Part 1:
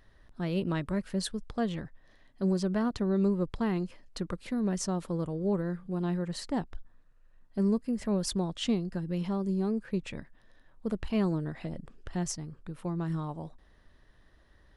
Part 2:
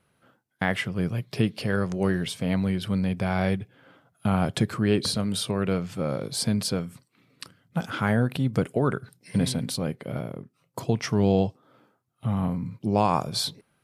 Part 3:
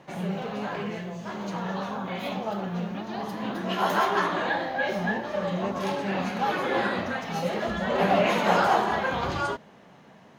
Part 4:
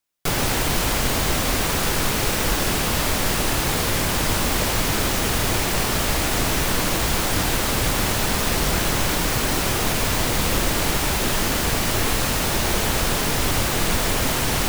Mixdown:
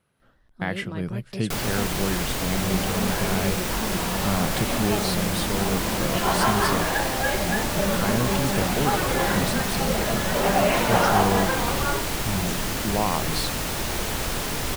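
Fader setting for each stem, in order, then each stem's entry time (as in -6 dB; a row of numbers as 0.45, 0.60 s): -4.5, -3.0, +1.0, -6.0 dB; 0.20, 0.00, 2.45, 1.25 s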